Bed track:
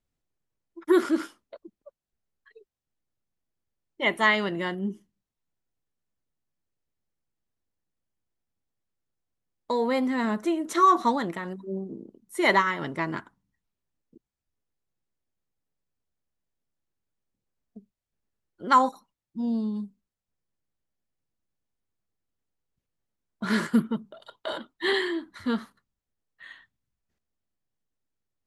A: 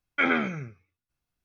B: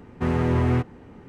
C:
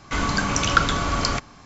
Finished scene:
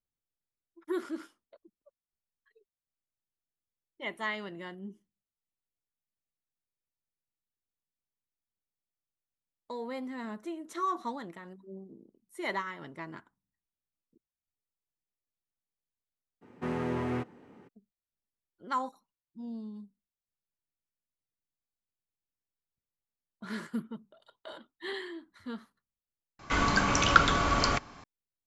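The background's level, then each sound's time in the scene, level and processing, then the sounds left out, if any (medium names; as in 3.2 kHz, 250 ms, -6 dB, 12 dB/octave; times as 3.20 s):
bed track -13 dB
16.41 s: add B -7.5 dB, fades 0.02 s + high-pass 190 Hz
26.39 s: replace with C -2 dB + tone controls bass -4 dB, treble -5 dB
not used: A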